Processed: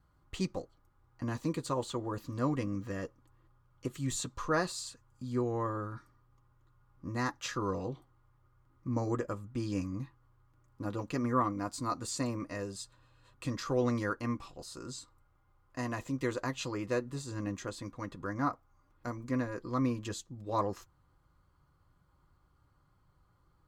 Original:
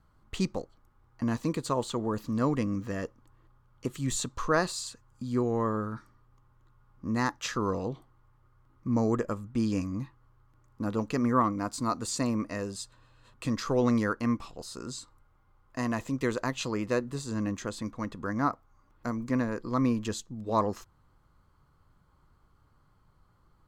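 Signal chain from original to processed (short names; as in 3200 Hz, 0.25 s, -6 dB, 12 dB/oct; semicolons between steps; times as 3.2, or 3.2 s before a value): notch comb 220 Hz; gain -3 dB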